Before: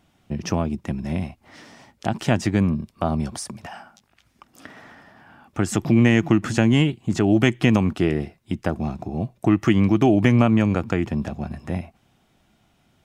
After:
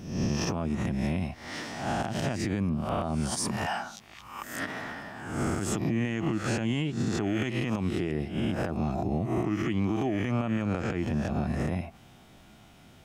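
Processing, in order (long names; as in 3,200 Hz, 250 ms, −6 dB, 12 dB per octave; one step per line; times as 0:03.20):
peak hold with a rise ahead of every peak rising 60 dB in 0.70 s
downward compressor 16 to 1, threshold −29 dBFS, peak gain reduction 19.5 dB
brickwall limiter −25.5 dBFS, peak gain reduction 9.5 dB
level +6 dB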